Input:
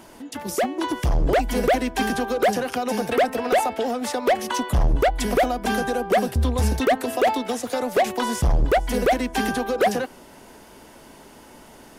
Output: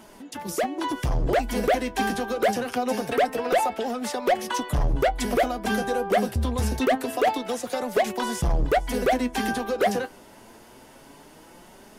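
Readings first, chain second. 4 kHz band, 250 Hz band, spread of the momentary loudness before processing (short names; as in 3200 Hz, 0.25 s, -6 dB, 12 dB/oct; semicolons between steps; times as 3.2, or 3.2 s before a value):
-2.5 dB, -2.5 dB, 5 LU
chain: flange 0.25 Hz, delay 4.6 ms, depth 5.7 ms, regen +53%; gain +1.5 dB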